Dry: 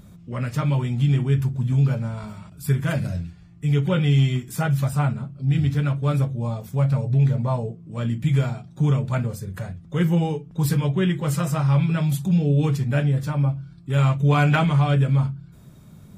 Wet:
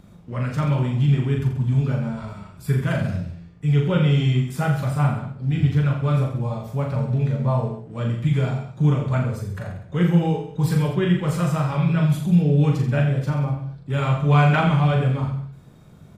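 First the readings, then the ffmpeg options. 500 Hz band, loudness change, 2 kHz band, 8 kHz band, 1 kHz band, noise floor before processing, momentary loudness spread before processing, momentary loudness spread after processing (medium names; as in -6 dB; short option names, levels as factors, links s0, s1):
+2.0 dB, +0.5 dB, +1.0 dB, no reading, +2.0 dB, -46 dBFS, 10 LU, 10 LU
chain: -filter_complex "[0:a]lowpass=f=3900:p=1,acrossover=split=500|2500[s0][s1][s2];[s0]aeval=exprs='sgn(val(0))*max(abs(val(0))-0.00224,0)':c=same[s3];[s3][s1][s2]amix=inputs=3:normalize=0,aecho=1:1:40|84|132.4|185.6|244.2:0.631|0.398|0.251|0.158|0.1"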